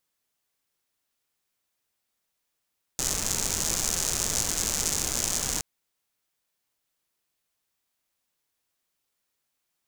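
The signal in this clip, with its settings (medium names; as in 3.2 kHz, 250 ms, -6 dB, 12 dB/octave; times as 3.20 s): rain from filtered ticks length 2.62 s, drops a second 160, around 6.7 kHz, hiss -4.5 dB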